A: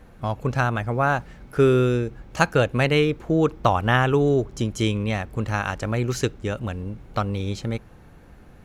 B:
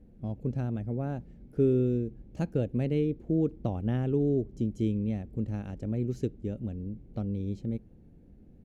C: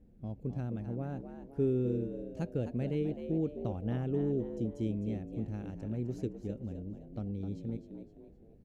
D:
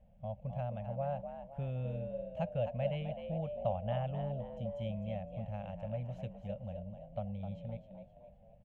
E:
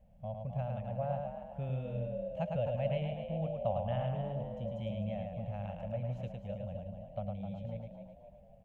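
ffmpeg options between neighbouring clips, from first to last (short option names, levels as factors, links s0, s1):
-af "firequalizer=gain_entry='entry(140,0);entry(210,5);entry(1100,-24);entry(2100,-17)':delay=0.05:min_phase=1,volume=0.447"
-filter_complex "[0:a]asplit=5[s0][s1][s2][s3][s4];[s1]adelay=258,afreqshift=72,volume=0.335[s5];[s2]adelay=516,afreqshift=144,volume=0.127[s6];[s3]adelay=774,afreqshift=216,volume=0.0484[s7];[s4]adelay=1032,afreqshift=288,volume=0.0184[s8];[s0][s5][s6][s7][s8]amix=inputs=5:normalize=0,volume=0.531"
-af "firequalizer=gain_entry='entry(190,0);entry(280,-22);entry(390,-27);entry(570,14);entry(1400,-1);entry(3000,9);entry(4500,-13)':delay=0.05:min_phase=1,volume=0.794"
-af "aecho=1:1:107:0.631"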